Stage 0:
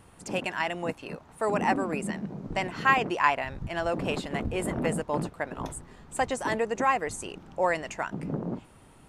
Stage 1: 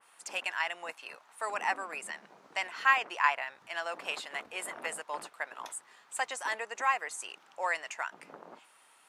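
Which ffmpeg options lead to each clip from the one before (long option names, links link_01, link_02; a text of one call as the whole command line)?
ffmpeg -i in.wav -af "highpass=1100,adynamicequalizer=threshold=0.00891:dfrequency=2500:dqfactor=0.7:tfrequency=2500:tqfactor=0.7:attack=5:release=100:ratio=0.375:range=2.5:mode=cutabove:tftype=highshelf" out.wav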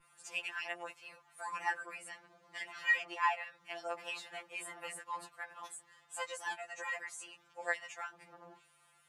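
ffmpeg -i in.wav -af "aeval=exprs='val(0)+0.00158*(sin(2*PI*50*n/s)+sin(2*PI*2*50*n/s)/2+sin(2*PI*3*50*n/s)/3+sin(2*PI*4*50*n/s)/4+sin(2*PI*5*50*n/s)/5)':channel_layout=same,afftfilt=real='re*2.83*eq(mod(b,8),0)':imag='im*2.83*eq(mod(b,8),0)':win_size=2048:overlap=0.75,volume=-4dB" out.wav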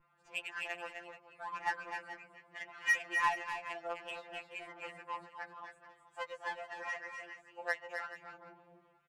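ffmpeg -i in.wav -filter_complex "[0:a]adynamicsmooth=sensitivity=6.5:basefreq=1700,asplit=2[link_01][link_02];[link_02]aecho=0:1:254|271|430:0.422|0.316|0.178[link_03];[link_01][link_03]amix=inputs=2:normalize=0" out.wav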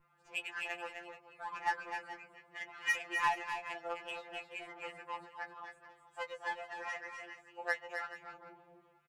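ffmpeg -i in.wav -filter_complex "[0:a]asplit=2[link_01][link_02];[link_02]adelay=14,volume=-8dB[link_03];[link_01][link_03]amix=inputs=2:normalize=0" out.wav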